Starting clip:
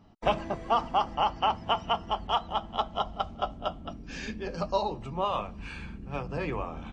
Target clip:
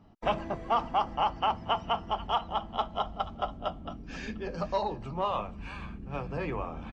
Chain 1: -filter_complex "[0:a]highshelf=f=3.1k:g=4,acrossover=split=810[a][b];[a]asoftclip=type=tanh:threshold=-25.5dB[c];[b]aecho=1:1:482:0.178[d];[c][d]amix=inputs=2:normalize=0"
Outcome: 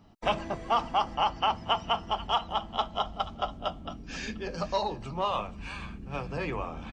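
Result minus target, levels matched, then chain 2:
8000 Hz band +7.5 dB
-filter_complex "[0:a]highshelf=f=3.1k:g=-7,acrossover=split=810[a][b];[a]asoftclip=type=tanh:threshold=-25.5dB[c];[b]aecho=1:1:482:0.178[d];[c][d]amix=inputs=2:normalize=0"

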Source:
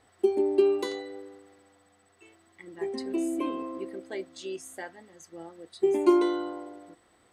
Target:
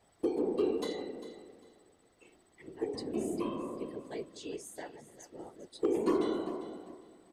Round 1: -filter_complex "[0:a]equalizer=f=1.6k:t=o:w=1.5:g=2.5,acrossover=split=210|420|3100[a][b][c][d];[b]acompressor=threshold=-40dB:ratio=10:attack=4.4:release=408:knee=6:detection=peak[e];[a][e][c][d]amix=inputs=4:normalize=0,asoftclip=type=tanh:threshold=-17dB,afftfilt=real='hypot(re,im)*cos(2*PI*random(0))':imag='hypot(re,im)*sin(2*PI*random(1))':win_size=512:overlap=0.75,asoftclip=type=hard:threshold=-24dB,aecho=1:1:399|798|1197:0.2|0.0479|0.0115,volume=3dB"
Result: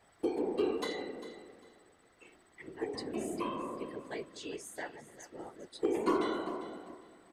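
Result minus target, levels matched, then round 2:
compressor: peak gain reduction +10.5 dB; 2000 Hz band +8.0 dB
-filter_complex "[0:a]equalizer=f=1.6k:t=o:w=1.5:g=-5.5,acrossover=split=210|420|3100[a][b][c][d];[b]acompressor=threshold=-29dB:ratio=10:attack=4.4:release=408:knee=6:detection=peak[e];[a][e][c][d]amix=inputs=4:normalize=0,asoftclip=type=tanh:threshold=-17dB,afftfilt=real='hypot(re,im)*cos(2*PI*random(0))':imag='hypot(re,im)*sin(2*PI*random(1))':win_size=512:overlap=0.75,asoftclip=type=hard:threshold=-24dB,aecho=1:1:399|798|1197:0.2|0.0479|0.0115,volume=3dB"

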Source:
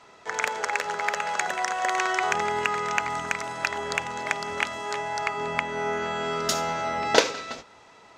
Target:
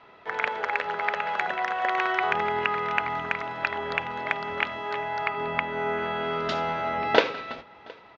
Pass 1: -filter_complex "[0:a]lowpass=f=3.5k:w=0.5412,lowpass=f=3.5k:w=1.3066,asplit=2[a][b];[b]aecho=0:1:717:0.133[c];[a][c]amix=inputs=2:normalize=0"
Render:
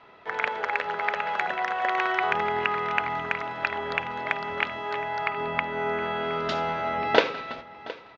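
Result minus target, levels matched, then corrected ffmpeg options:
echo-to-direct +7.5 dB
-filter_complex "[0:a]lowpass=f=3.5k:w=0.5412,lowpass=f=3.5k:w=1.3066,asplit=2[a][b];[b]aecho=0:1:717:0.0562[c];[a][c]amix=inputs=2:normalize=0"

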